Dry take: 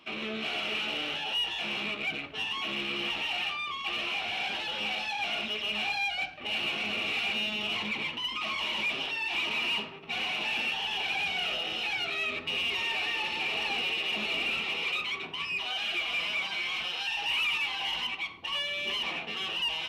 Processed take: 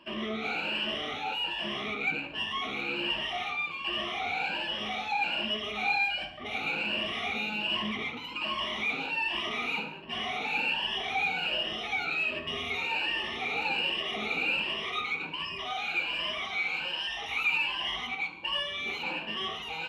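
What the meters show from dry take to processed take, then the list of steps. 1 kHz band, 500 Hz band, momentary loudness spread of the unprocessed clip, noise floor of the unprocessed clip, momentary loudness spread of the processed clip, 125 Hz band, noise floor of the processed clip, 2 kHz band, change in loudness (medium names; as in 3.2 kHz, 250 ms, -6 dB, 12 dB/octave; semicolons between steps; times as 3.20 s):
+3.0 dB, +2.0 dB, 4 LU, -40 dBFS, 5 LU, +2.5 dB, -40 dBFS, 0.0 dB, -0.5 dB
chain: drifting ripple filter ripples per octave 1.3, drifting +1.3 Hz, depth 16 dB; treble shelf 3.2 kHz -11.5 dB; gated-style reverb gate 260 ms falling, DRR 8.5 dB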